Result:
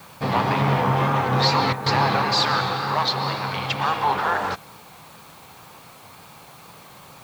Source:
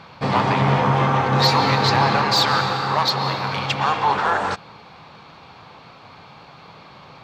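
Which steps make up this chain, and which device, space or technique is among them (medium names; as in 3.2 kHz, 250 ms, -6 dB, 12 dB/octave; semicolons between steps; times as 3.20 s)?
worn cassette (low-pass 7.7 kHz; wow and flutter; level dips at 1.73 s, 131 ms -9 dB; white noise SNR 28 dB); trim -2.5 dB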